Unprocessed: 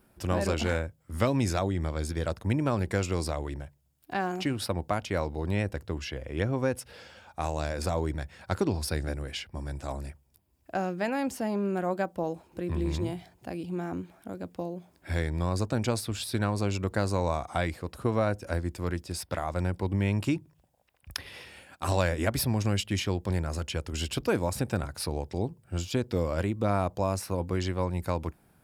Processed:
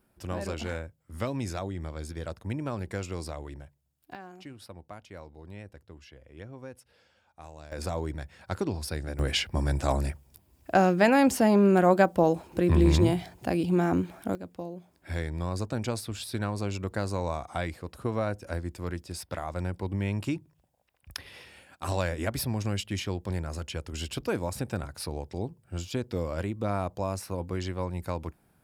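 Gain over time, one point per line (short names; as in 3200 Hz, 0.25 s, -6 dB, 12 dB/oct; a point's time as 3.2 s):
-6 dB
from 4.15 s -15.5 dB
from 7.72 s -3 dB
from 9.19 s +9 dB
from 14.35 s -3 dB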